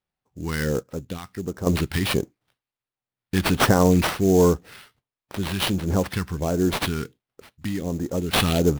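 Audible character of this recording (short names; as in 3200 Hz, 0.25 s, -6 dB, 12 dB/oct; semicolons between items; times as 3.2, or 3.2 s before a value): phasing stages 2, 1.4 Hz, lowest notch 500–3100 Hz; aliases and images of a low sample rate 6900 Hz, jitter 20%; random-step tremolo 1.2 Hz, depth 75%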